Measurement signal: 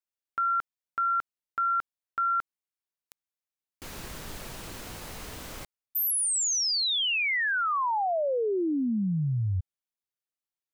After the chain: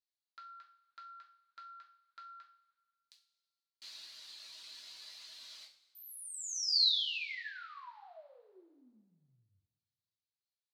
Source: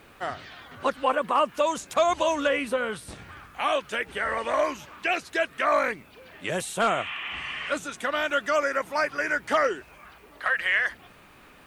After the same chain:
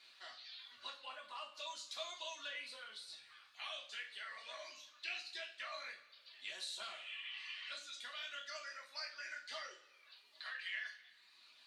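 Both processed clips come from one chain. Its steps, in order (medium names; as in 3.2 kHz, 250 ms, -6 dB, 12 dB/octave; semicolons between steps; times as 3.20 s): reverb removal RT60 1.1 s; compression 1.5:1, threshold -45 dBFS; band-pass filter 4.2 kHz, Q 5.1; two-slope reverb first 0.39 s, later 1.7 s, from -18 dB, DRR -3 dB; trim +4 dB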